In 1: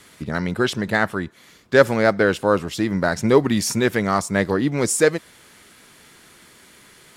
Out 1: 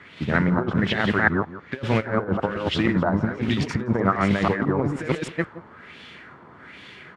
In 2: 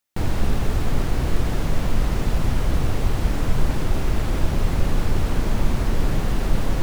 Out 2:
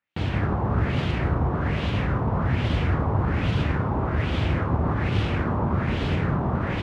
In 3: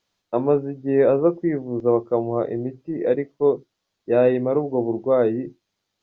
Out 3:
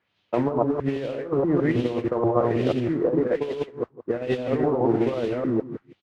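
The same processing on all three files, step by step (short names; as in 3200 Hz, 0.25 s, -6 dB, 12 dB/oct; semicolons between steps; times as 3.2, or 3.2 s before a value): reverse delay 0.16 s, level -0.5 dB; in parallel at -5.5 dB: soft clip -8.5 dBFS; on the sum: HPF 73 Hz 24 dB/oct; negative-ratio compressor -17 dBFS, ratio -0.5; modulation noise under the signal 15 dB; low shelf 160 Hz +6 dB; on a send: echo 0.17 s -15 dB; on the sum: LFO low-pass sine 1.2 Hz 980–3200 Hz; gain -7 dB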